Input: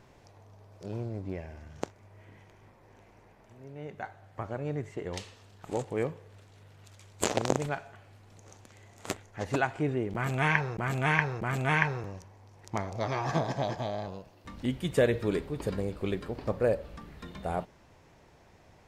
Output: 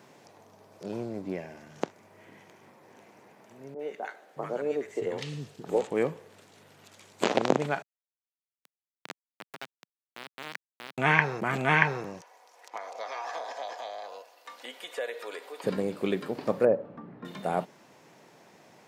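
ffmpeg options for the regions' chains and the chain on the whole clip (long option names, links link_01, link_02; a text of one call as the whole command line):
ffmpeg -i in.wav -filter_complex "[0:a]asettb=1/sr,asplit=3[link_01][link_02][link_03];[link_01]atrim=end=3.744[link_04];[link_02]atrim=start=3.74:end=5.88,asetpts=PTS-STARTPTS,afade=type=in:duration=0.004:curve=qsin,afade=type=out:start_time=2.136:duration=0.004:curve=qsin,equalizer=frequency=460:width_type=o:width=0.41:gain=6,acrossover=split=240|1100[link_05][link_06][link_07];[link_07]adelay=50[link_08];[link_05]adelay=620[link_09];[link_09][link_06][link_08]amix=inputs=3:normalize=0,atrim=end_sample=94374[link_10];[link_03]atrim=start=5.876[link_11];[link_04][link_10]acrossfade=duration=0.004:curve1=hsin:curve2=qsin[link_12];[link_12][link_11]acrossfade=duration=0.004:curve1=qsin:curve2=hsin,asettb=1/sr,asplit=3[link_13][link_14][link_15];[link_13]atrim=end=7.824[link_16];[link_14]atrim=start=7.82:end=10.98,asetpts=PTS-STARTPTS,afade=type=in:duration=0.004:curve=qsin,afade=type=out:start_time=3.156:duration=0.004:curve=qsin,bandreject=frequency=61.41:width_type=h:width=4,bandreject=frequency=122.82:width_type=h:width=4,bandreject=frequency=184.23:width_type=h:width=4,acompressor=threshold=-39dB:ratio=3:attack=3.2:release=140:knee=1:detection=peak,aeval=exprs='val(0)*gte(abs(val(0)),0.0282)':channel_layout=same[link_17];[link_15]atrim=start=10.976[link_18];[link_16][link_17]acrossfade=duration=0.004:curve1=hsin:curve2=qsin[link_19];[link_19][link_18]acrossfade=duration=0.004:curve1=qsin:curve2=hsin,asettb=1/sr,asplit=3[link_20][link_21][link_22];[link_20]atrim=end=12.214[link_23];[link_21]atrim=start=12.21:end=15.64,asetpts=PTS-STARTPTS,afade=type=in:duration=0.004:curve=qsin,afade=type=out:start_time=3.426:duration=0.004:curve=qsin,highpass=frequency=530:width=0.5412,highpass=frequency=530:width=1.3066,acompressor=threshold=-43dB:ratio=2:attack=3.2:release=140:knee=1:detection=peak,aecho=1:1:4.1:0.35,atrim=end_sample=151263[link_24];[link_22]atrim=start=15.636[link_25];[link_23][link_24]acrossfade=duration=0.004:curve1=hsin:curve2=qsin[link_26];[link_26][link_25]acrossfade=duration=0.004:curve1=qsin:curve2=hsin,asettb=1/sr,asplit=3[link_27][link_28][link_29];[link_27]atrim=end=16.654[link_30];[link_28]atrim=start=16.65:end=17.25,asetpts=PTS-STARTPTS,afade=type=in:duration=0.004:curve=qsin,afade=type=out:start_time=0.596:duration=0.004:curve=qsin,lowpass=1100,aeval=exprs='val(0)+0.00447*(sin(2*PI*60*n/s)+sin(2*PI*2*60*n/s)/2+sin(2*PI*3*60*n/s)/3+sin(2*PI*4*60*n/s)/4+sin(2*PI*5*60*n/s)/5)':channel_layout=same[link_31];[link_29]atrim=start=17.246[link_32];[link_30][link_31]acrossfade=duration=0.004:curve1=hsin:curve2=qsin[link_33];[link_33][link_32]acrossfade=duration=0.004:curve1=qsin:curve2=hsin,highpass=frequency=160:width=0.5412,highpass=frequency=160:width=1.3066,acrossover=split=4500[link_34][link_35];[link_35]acompressor=threshold=-59dB:ratio=4:attack=1:release=60[link_36];[link_34][link_36]amix=inputs=2:normalize=0,highshelf=frequency=6600:gain=5.5,volume=4dB" out.wav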